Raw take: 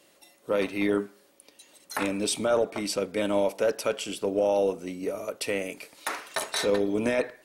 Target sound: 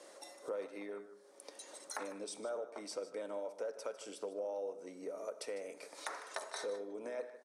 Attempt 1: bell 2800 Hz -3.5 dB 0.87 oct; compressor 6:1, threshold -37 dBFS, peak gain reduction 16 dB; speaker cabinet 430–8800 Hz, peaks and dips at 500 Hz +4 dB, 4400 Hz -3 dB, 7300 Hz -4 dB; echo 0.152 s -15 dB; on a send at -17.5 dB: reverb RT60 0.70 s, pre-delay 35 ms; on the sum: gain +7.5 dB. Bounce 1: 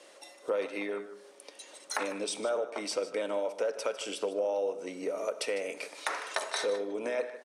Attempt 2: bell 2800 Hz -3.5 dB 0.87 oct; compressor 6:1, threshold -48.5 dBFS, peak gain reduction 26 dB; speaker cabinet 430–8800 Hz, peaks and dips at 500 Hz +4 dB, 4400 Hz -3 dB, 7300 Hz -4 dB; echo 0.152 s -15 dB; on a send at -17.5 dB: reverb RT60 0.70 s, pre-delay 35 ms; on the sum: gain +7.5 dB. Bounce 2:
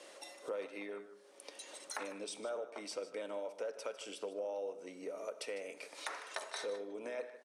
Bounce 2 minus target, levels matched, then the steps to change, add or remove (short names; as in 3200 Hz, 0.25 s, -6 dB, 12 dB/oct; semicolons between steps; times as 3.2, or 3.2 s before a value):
2000 Hz band +2.5 dB
change: bell 2800 Hz -13 dB 0.87 oct